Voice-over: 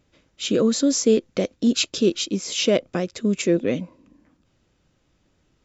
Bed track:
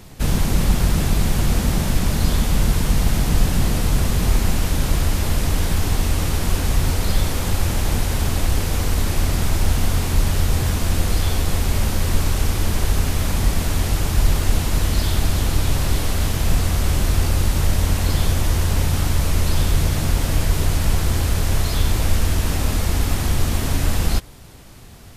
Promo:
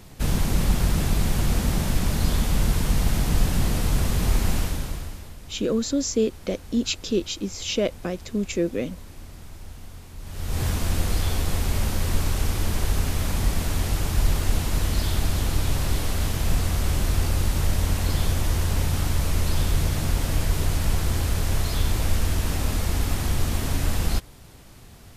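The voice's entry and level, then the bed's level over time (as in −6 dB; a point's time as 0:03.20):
5.10 s, −4.5 dB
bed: 0:04.59 −4 dB
0:05.36 −22.5 dB
0:10.18 −22.5 dB
0:10.62 −4.5 dB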